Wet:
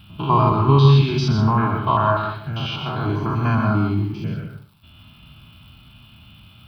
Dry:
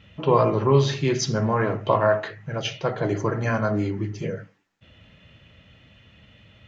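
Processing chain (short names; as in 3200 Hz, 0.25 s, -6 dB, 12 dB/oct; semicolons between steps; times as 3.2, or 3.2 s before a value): stepped spectrum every 0.1 s; crackle 340/s -50 dBFS; fixed phaser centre 1900 Hz, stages 6; on a send: reverb RT60 0.35 s, pre-delay 0.116 s, DRR 4.5 dB; on the sum: gain +7.5 dB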